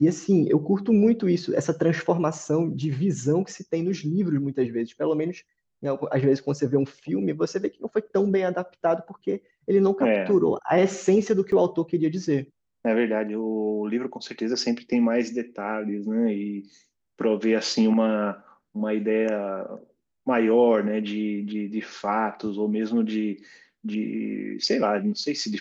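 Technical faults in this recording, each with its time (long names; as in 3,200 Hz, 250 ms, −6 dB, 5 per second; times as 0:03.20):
0:11.52: drop-out 2.2 ms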